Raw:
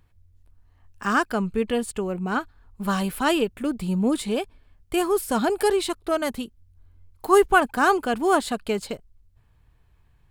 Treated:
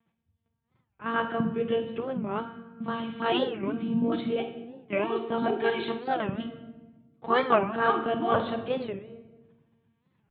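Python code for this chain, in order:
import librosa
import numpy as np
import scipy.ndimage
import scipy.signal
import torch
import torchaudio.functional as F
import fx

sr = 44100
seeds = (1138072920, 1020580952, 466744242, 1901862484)

y = fx.vibrato(x, sr, rate_hz=10.0, depth_cents=56.0)
y = fx.lpc_monotone(y, sr, seeds[0], pitch_hz=230.0, order=16)
y = scipy.signal.sosfilt(scipy.signal.butter(4, 120.0, 'highpass', fs=sr, output='sos'), y)
y = fx.low_shelf(y, sr, hz=240.0, db=9.5)
y = fx.room_flutter(y, sr, wall_m=8.6, rt60_s=0.26)
y = fx.room_shoebox(y, sr, seeds[1], volume_m3=760.0, walls='mixed', distance_m=0.68)
y = fx.record_warp(y, sr, rpm=45.0, depth_cents=250.0)
y = F.gain(torch.from_numpy(y), -6.0).numpy()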